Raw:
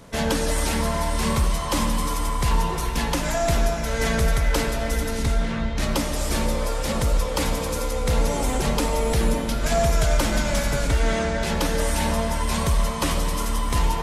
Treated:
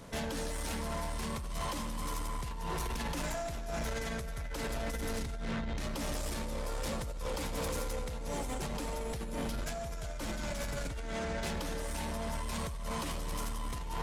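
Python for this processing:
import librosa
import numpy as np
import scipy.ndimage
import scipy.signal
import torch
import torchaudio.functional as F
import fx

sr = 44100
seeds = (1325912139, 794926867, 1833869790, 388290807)

y = fx.over_compress(x, sr, threshold_db=-26.0, ratio=-1.0)
y = 10.0 ** (-23.5 / 20.0) * np.tanh(y / 10.0 ** (-23.5 / 20.0))
y = y * librosa.db_to_amplitude(-7.5)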